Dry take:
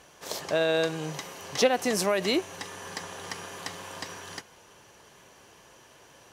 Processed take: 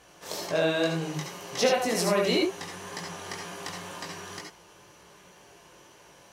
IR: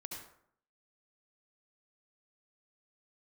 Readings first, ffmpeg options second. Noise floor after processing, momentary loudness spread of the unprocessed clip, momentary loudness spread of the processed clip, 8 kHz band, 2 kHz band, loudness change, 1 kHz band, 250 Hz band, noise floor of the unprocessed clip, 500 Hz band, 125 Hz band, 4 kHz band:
−55 dBFS, 14 LU, 14 LU, 0.0 dB, 0.0 dB, +0.5 dB, +0.5 dB, +2.0 dB, −56 dBFS, +0.5 dB, +4.5 dB, +0.5 dB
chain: -filter_complex "[0:a]flanger=delay=17:depth=4.8:speed=2[link_01];[1:a]atrim=start_sample=2205,atrim=end_sample=3969[link_02];[link_01][link_02]afir=irnorm=-1:irlink=0,volume=7.5dB"

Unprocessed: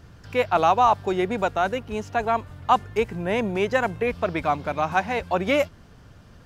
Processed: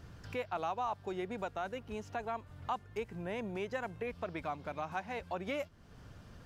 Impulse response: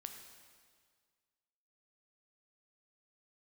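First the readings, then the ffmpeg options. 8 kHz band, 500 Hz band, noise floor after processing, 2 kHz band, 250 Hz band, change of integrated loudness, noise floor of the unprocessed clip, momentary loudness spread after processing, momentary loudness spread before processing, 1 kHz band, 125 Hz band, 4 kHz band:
−15.5 dB, −15.5 dB, −56 dBFS, −16.0 dB, −14.5 dB, −16.0 dB, −49 dBFS, 5 LU, 7 LU, −17.0 dB, −13.5 dB, −16.0 dB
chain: -af "acompressor=threshold=-40dB:ratio=2,volume=-4.5dB"

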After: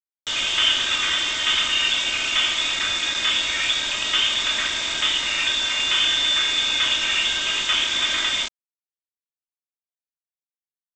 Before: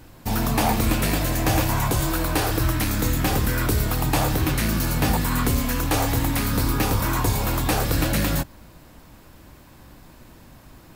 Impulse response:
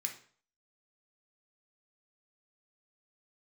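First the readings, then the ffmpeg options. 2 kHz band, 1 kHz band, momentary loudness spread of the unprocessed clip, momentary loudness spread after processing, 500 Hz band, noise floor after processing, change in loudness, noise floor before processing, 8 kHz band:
+7.0 dB, −5.5 dB, 2 LU, 4 LU, −11.0 dB, below −85 dBFS, +3.0 dB, −48 dBFS, +0.5 dB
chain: -filter_complex "[0:a]acrossover=split=220 2200:gain=0.141 1 0.0708[link_01][link_02][link_03];[link_01][link_02][link_03]amix=inputs=3:normalize=0[link_04];[1:a]atrim=start_sample=2205,asetrate=48510,aresample=44100[link_05];[link_04][link_05]afir=irnorm=-1:irlink=0,lowpass=frequency=3200:width_type=q:width=0.5098,lowpass=frequency=3200:width_type=q:width=0.6013,lowpass=frequency=3200:width_type=q:width=0.9,lowpass=frequency=3200:width_type=q:width=2.563,afreqshift=-3800,aresample=16000,acrusher=bits=5:mix=0:aa=0.000001,aresample=44100,aecho=1:1:3.2:0.45,volume=8.5dB"

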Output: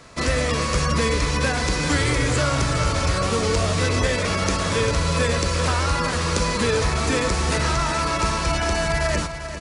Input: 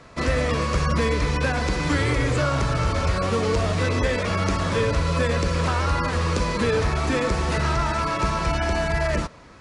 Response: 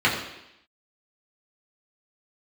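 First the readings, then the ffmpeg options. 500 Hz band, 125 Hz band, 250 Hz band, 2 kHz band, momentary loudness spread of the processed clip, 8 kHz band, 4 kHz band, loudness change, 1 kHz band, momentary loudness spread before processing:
+0.5 dB, +0.5 dB, +0.5 dB, +2.5 dB, 2 LU, +9.0 dB, +5.5 dB, +1.5 dB, +1.0 dB, 2 LU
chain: -af "highshelf=frequency=4500:gain=12,aecho=1:1:397|794|1191|1588|1985|2382:0.282|0.149|0.0792|0.042|0.0222|0.0118"

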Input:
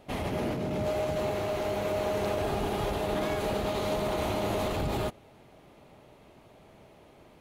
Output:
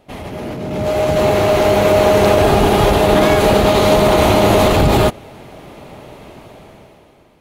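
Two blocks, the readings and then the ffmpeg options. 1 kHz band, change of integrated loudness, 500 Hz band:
+18.0 dB, +18.0 dB, +17.5 dB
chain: -af "dynaudnorm=framelen=220:gausssize=9:maxgain=16dB,volume=3dB"

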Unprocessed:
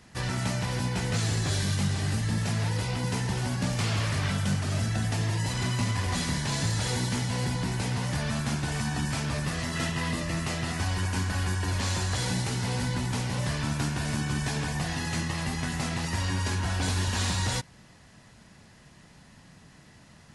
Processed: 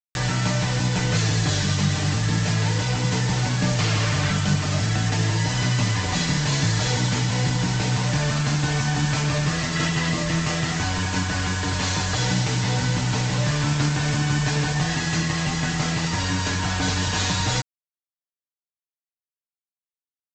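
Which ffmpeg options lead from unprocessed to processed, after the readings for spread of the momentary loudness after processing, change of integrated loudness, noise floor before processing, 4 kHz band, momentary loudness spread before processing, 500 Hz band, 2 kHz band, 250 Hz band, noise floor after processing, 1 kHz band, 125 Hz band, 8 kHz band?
2 LU, +6.5 dB, −54 dBFS, +7.5 dB, 3 LU, +6.0 dB, +7.5 dB, +6.0 dB, below −85 dBFS, +6.5 dB, +6.5 dB, +7.0 dB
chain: -af "aresample=16000,acrusher=bits=5:mix=0:aa=0.000001,aresample=44100,aecho=1:1:6.6:0.56,acompressor=mode=upward:threshold=-35dB:ratio=2.5,volume=5dB"

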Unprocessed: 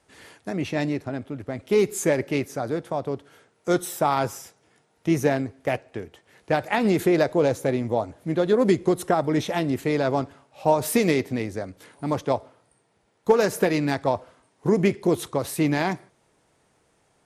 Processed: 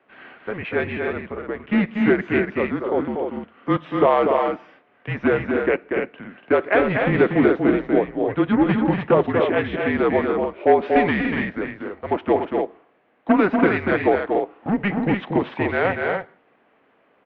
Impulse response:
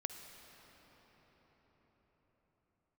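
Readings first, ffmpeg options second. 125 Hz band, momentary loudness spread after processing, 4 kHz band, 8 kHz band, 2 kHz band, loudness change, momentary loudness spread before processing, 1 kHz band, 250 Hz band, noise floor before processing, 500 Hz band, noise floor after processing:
+0.5 dB, 12 LU, −2.0 dB, below −35 dB, +7.5 dB, +3.5 dB, 12 LU, +4.0 dB, +4.0 dB, −66 dBFS, +3.5 dB, −61 dBFS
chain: -af "volume=12.5dB,asoftclip=hard,volume=-12.5dB,highpass=frequency=480:width_type=q:width=0.5412,highpass=frequency=480:width_type=q:width=1.307,lowpass=frequency=3000:width_type=q:width=0.5176,lowpass=frequency=3000:width_type=q:width=0.7071,lowpass=frequency=3000:width_type=q:width=1.932,afreqshift=-200,aecho=1:1:239.1|288.6:0.562|0.501,volume=6.5dB"

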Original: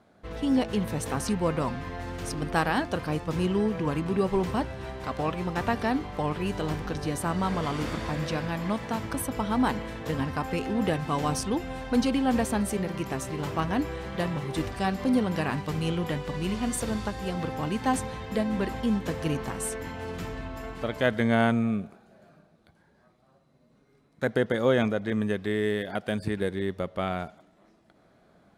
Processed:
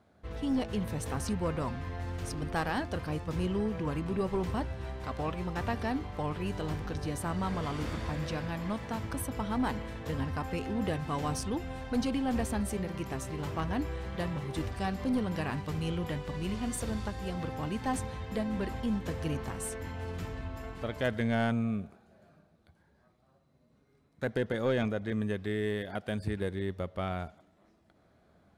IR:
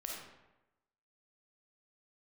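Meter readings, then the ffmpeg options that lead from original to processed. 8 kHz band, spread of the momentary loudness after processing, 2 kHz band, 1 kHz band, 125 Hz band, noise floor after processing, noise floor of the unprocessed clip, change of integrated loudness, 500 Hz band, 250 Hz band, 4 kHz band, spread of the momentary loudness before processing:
−5.5 dB, 6 LU, −6.5 dB, −6.5 dB, −3.0 dB, −67 dBFS, −63 dBFS, −5.5 dB, −6.0 dB, −5.5 dB, −6.0 dB, 8 LU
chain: -af "equalizer=frequency=77:width_type=o:width=0.81:gain=10.5,aeval=exprs='0.316*(cos(1*acos(clip(val(0)/0.316,-1,1)))-cos(1*PI/2))+0.0562*(cos(2*acos(clip(val(0)/0.316,-1,1)))-cos(2*PI/2))+0.0355*(cos(5*acos(clip(val(0)/0.316,-1,1)))-cos(5*PI/2))+0.00631*(cos(7*acos(clip(val(0)/0.316,-1,1)))-cos(7*PI/2))':channel_layout=same,volume=-8.5dB"

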